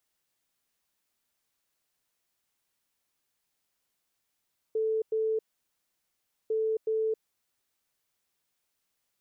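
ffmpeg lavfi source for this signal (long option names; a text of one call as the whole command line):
ffmpeg -f lavfi -i "aevalsrc='0.0562*sin(2*PI*440*t)*clip(min(mod(mod(t,1.75),0.37),0.27-mod(mod(t,1.75),0.37))/0.005,0,1)*lt(mod(t,1.75),0.74)':duration=3.5:sample_rate=44100" out.wav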